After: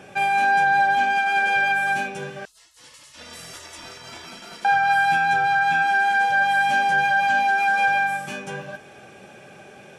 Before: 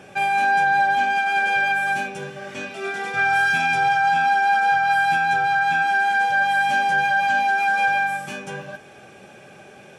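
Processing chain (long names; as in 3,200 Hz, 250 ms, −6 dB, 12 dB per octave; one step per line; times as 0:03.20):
0:02.45–0:04.65: gate on every frequency bin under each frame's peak −30 dB weak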